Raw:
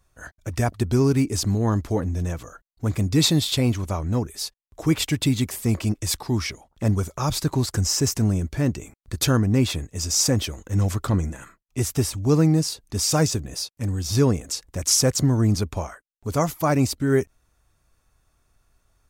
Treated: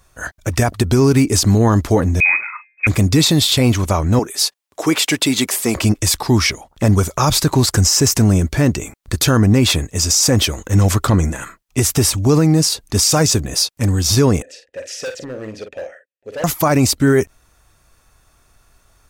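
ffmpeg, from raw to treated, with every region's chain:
-filter_complex "[0:a]asettb=1/sr,asplit=3[s0][s1][s2];[s0]atrim=end=2.204[s3];[s1]atrim=start=2.2:end=2.87,asetpts=PTS-STARTPTS,afade=t=in:d=0.004:c=qsin,afade=t=out:st=0.666:d=0.004:c=qsin,bandreject=f=126:t=h:w=4,bandreject=f=252:t=h:w=4,bandreject=f=378:t=h:w=4,bandreject=f=504:t=h:w=4,bandreject=f=630:t=h:w=4,bandreject=f=756:t=h:w=4,bandreject=f=882:t=h:w=4,bandreject=f=1008:t=h:w=4,lowpass=f=2200:t=q:w=0.5098,lowpass=f=2200:t=q:w=0.6013,lowpass=f=2200:t=q:w=0.9,lowpass=f=2200:t=q:w=2.563,afreqshift=-2600,asplit=2[s4][s5];[s5]adelay=42,volume=0.224[s6];[s4][s6]amix=inputs=2:normalize=0,atrim=end_sample=29547[s7];[s2]atrim=start=2.866[s8];[s3][s7]acrossfade=d=0.004:c1=hsin:c2=qsin[s9];[s9][s8]acrossfade=d=0.004:c1=qsin:c2=hsin,asettb=1/sr,asplit=3[s10][s11][s12];[s10]atrim=end=4.194[s13];[s11]atrim=start=4.19:end=5.76,asetpts=PTS-STARTPTS,afade=t=in:d=0.004:c=qsin,afade=t=out:st=1.566:d=0.004:c=qsin,highpass=290,equalizer=f=14000:w=7.5:g=-11[s14];[s12]atrim=start=5.756[s15];[s13][s14]acrossfade=d=0.004:c1=hsin:c2=qsin[s16];[s16][s15]acrossfade=d=0.004:c1=qsin:c2=hsin,asettb=1/sr,asplit=3[s17][s18][s19];[s17]atrim=end=14.424[s20];[s18]atrim=start=14.42:end=16.44,asetpts=PTS-STARTPTS,afade=t=in:d=0.004:c=qsin,afade=t=out:st=2.016:d=0.004:c=qsin,asplit=3[s21][s22][s23];[s21]bandpass=f=530:t=q:w=8,volume=1[s24];[s22]bandpass=f=1840:t=q:w=8,volume=0.501[s25];[s23]bandpass=f=2480:t=q:w=8,volume=0.355[s26];[s24][s25][s26]amix=inputs=3:normalize=0,volume=56.2,asoftclip=hard,volume=0.0178,asplit=2[s27][s28];[s28]adelay=46,volume=0.422[s29];[s27][s29]amix=inputs=2:normalize=0,atrim=end_sample=89082[s30];[s19]atrim=start=16.436[s31];[s20][s30]acrossfade=d=0.004:c1=hsin:c2=qsin[s32];[s32][s31]acrossfade=d=0.004:c1=qsin:c2=hsin,lowshelf=f=410:g=-4.5,alimiter=level_in=7.5:limit=0.891:release=50:level=0:latency=1,volume=0.631"

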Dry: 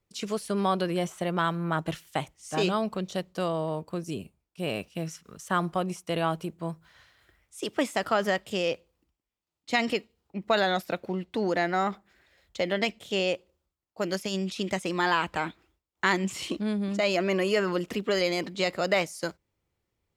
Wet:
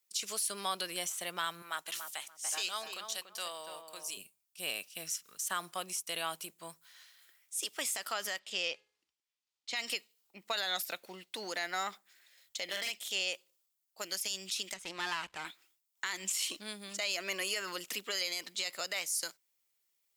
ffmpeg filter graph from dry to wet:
-filter_complex "[0:a]asettb=1/sr,asplit=3[s0][s1][s2];[s0]atrim=end=1.624[s3];[s1]atrim=start=1.62:end=4.17,asetpts=PTS-STARTPTS,afade=t=in:d=0.004:c=qsin,afade=t=out:st=2.546:d=0.004:c=qsin,highpass=f=820:p=1,asplit=2[s4][s5];[s5]adelay=288,lowpass=f=1400:p=1,volume=0.501,asplit=2[s6][s7];[s7]adelay=288,lowpass=f=1400:p=1,volume=0.25,asplit=2[s8][s9];[s9]adelay=288,lowpass=f=1400:p=1,volume=0.25[s10];[s4][s6][s8][s10]amix=inputs=4:normalize=0,atrim=end_sample=112455[s11];[s2]atrim=start=4.166[s12];[s3][s11]acrossfade=d=0.004:c1=hsin:c2=qsin[s13];[s13][s12]acrossfade=d=0.004:c1=qsin:c2=hsin,asettb=1/sr,asplit=3[s14][s15][s16];[s14]atrim=end=8.394[s17];[s15]atrim=start=8.39:end=9.76,asetpts=PTS-STARTPTS,afade=t=in:d=0.004:c=qsin,afade=t=out:st=1.366:d=0.004:c=qsin,lowpass=4900,bandreject=f=421.1:t=h:w=4,bandreject=f=842.2:t=h:w=4,bandreject=f=1263.3:t=h:w=4,bandreject=f=1684.4:t=h:w=4,bandreject=f=2105.5:t=h:w=4,deesser=0.35[s18];[s16]atrim=start=9.756[s19];[s17][s18]acrossfade=d=0.004:c1=hsin:c2=qsin[s20];[s20][s19]acrossfade=d=0.004:c1=qsin:c2=hsin,asettb=1/sr,asplit=3[s21][s22][s23];[s21]atrim=end=12.644[s24];[s22]atrim=start=12.64:end=13.09,asetpts=PTS-STARTPTS,afade=t=in:d=0.004:c=qsin,afade=t=out:st=0.446:d=0.004:c=qsin,asplit=2[s25][s26];[s26]adelay=47,volume=0.708[s27];[s25][s27]amix=inputs=2:normalize=0,atrim=end_sample=19845,volume=10,asoftclip=hard,volume=0.1[s28];[s23]atrim=start=13.086[s29];[s24][s28]acrossfade=d=0.004:c1=hsin:c2=qsin[s30];[s30][s29]acrossfade=d=0.004:c1=qsin:c2=hsin,asettb=1/sr,asplit=3[s31][s32][s33];[s31]atrim=end=14.744[s34];[s32]atrim=start=14.74:end=15.45,asetpts=PTS-STARTPTS,afade=t=in:d=0.004:c=qsin,afade=t=out:st=0.706:d=0.004:c=qsin,aeval=exprs='if(lt(val(0),0),0.251*val(0),val(0))':c=same,aemphasis=mode=reproduction:type=bsi[s35];[s33]atrim=start=15.446[s36];[s34][s35]acrossfade=d=0.004:c1=hsin:c2=qsin[s37];[s37][s36]acrossfade=d=0.004:c1=qsin:c2=hsin,aderivative,alimiter=level_in=2.24:limit=0.0631:level=0:latency=1:release=131,volume=0.447,volume=2.66"

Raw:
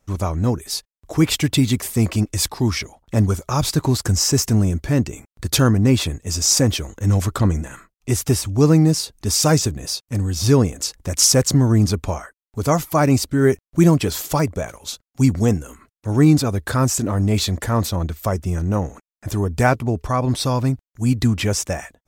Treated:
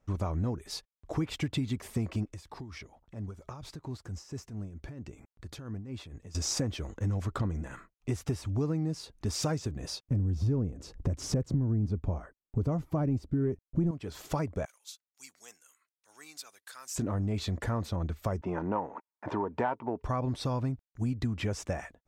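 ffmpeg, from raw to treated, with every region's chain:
-filter_complex "[0:a]asettb=1/sr,asplit=3[s0][s1][s2];[s0]atrim=end=2.334[s3];[s1]atrim=start=2.33:end=6.35,asetpts=PTS-STARTPTS,afade=t=in:d=0.004:c=qsin,afade=t=out:st=4.016:d=0.004:c=qsin,acompressor=threshold=0.02:ratio=3:attack=3.2:release=140:knee=1:detection=peak,tremolo=f=4.4:d=0.64[s4];[s2]atrim=start=6.346[s5];[s3][s4]acrossfade=d=0.004:c1=hsin:c2=qsin[s6];[s6][s5]acrossfade=d=0.004:c1=qsin:c2=hsin,asettb=1/sr,asplit=3[s7][s8][s9];[s7]atrim=end=10.034[s10];[s8]atrim=start=10.03:end=13.91,asetpts=PTS-STARTPTS,afade=t=in:d=0.004:c=qsin,afade=t=out:st=3.876:d=0.004:c=qsin,acontrast=38,tiltshelf=f=660:g=8.5[s11];[s9]atrim=start=13.906[s12];[s10][s11]acrossfade=d=0.004:c1=hsin:c2=qsin[s13];[s13][s12]acrossfade=d=0.004:c1=qsin:c2=hsin,asettb=1/sr,asplit=3[s14][s15][s16];[s14]atrim=end=14.654[s17];[s15]atrim=start=14.65:end=16.96,asetpts=PTS-STARTPTS,afade=t=in:d=0.004:c=qsin,afade=t=out:st=2.306:d=0.004:c=qsin,highpass=f=1300:p=1,aderivative[s18];[s16]atrim=start=16.956[s19];[s17][s18]acrossfade=d=0.004:c1=hsin:c2=qsin[s20];[s20][s19]acrossfade=d=0.004:c1=qsin:c2=hsin,asettb=1/sr,asplit=3[s21][s22][s23];[s21]atrim=end=18.414[s24];[s22]atrim=start=18.41:end=20.02,asetpts=PTS-STARTPTS,afade=t=in:d=0.004:c=qsin,afade=t=out:st=1.606:d=0.004:c=qsin,equalizer=f=930:w=4.8:g=14,acontrast=45,highpass=300,lowpass=2300[s25];[s23]atrim=start=20.016[s26];[s24][s25]acrossfade=d=0.004:c1=hsin:c2=qsin[s27];[s27][s26]acrossfade=d=0.004:c1=qsin:c2=hsin,aemphasis=mode=reproduction:type=75kf,acompressor=threshold=0.0708:ratio=6,volume=0.562"

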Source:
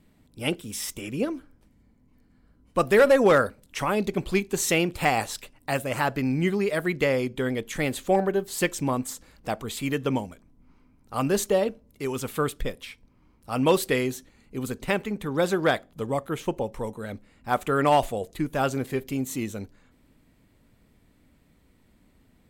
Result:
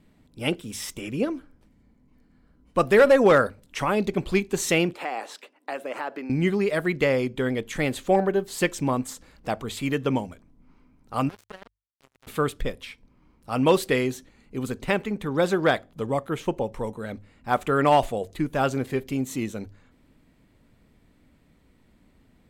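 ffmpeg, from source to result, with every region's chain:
-filter_complex "[0:a]asettb=1/sr,asplit=3[s0][s1][s2];[s0]atrim=end=4.934[s3];[s1]atrim=start=4.93:end=6.3,asetpts=PTS-STARTPTS,afade=t=in:d=0.004:c=qsin,afade=t=out:st=1.366:d=0.004:c=qsin,acompressor=threshold=0.0398:ratio=3:attack=3.2:release=140:knee=1:detection=peak,highpass=f=300:w=0.5412,highpass=f=300:w=1.3066,highshelf=f=3900:g=-11[s4];[s2]atrim=start=6.296[s5];[s3][s4]acrossfade=d=0.004:c1=hsin:c2=qsin[s6];[s6][s5]acrossfade=d=0.004:c1=qsin:c2=hsin,asettb=1/sr,asplit=3[s7][s8][s9];[s7]atrim=end=11.294[s10];[s8]atrim=start=11.29:end=12.27,asetpts=PTS-STARTPTS,afade=t=in:d=0.004:c=qsin,afade=t=out:st=0.976:d=0.004:c=qsin,acompressor=threshold=0.00708:ratio=2.5:attack=3.2:release=140:knee=1:detection=peak,acrusher=bits=4:mix=0:aa=0.5[s11];[s9]atrim=start=12.266[s12];[s10][s11]acrossfade=d=0.004:c1=hsin:c2=qsin[s13];[s13][s12]acrossfade=d=0.004:c1=qsin:c2=hsin,highshelf=f=8000:g=-8,bandreject=f=50:t=h:w=6,bandreject=f=100:t=h:w=6,volume=1.19"

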